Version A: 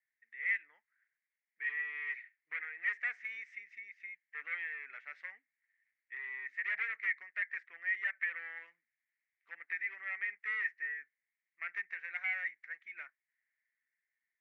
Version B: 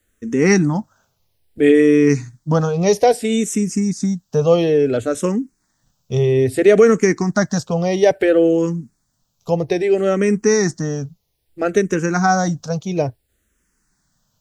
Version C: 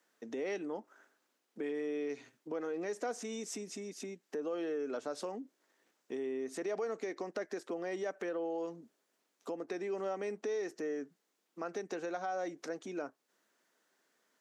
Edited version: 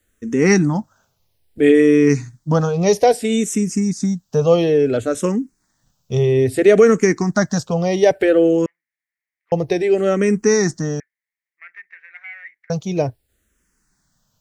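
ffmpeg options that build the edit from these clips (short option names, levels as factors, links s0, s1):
-filter_complex "[0:a]asplit=2[s0][s1];[1:a]asplit=3[s2][s3][s4];[s2]atrim=end=8.662[s5];[s0]atrim=start=8.658:end=9.522[s6];[s3]atrim=start=9.518:end=11.002[s7];[s1]atrim=start=10.998:end=12.702[s8];[s4]atrim=start=12.698[s9];[s5][s6]acrossfade=d=0.004:c1=hsin:c2=hsin[s10];[s10][s7]acrossfade=d=0.004:c1=hsin:c2=hsin[s11];[s11][s8]acrossfade=d=0.004:c1=hsin:c2=hsin[s12];[s12][s9]acrossfade=d=0.004:c1=hsin:c2=hsin"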